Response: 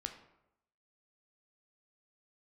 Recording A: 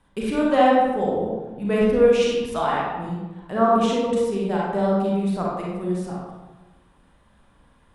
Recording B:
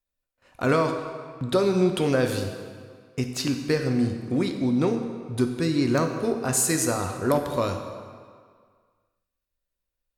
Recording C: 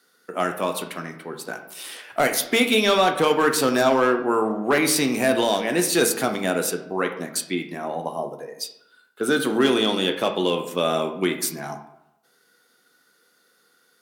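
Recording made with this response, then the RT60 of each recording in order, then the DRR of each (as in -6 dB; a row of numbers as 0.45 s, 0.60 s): C; 1.1 s, 1.9 s, 0.85 s; -4.5 dB, 5.0 dB, 5.0 dB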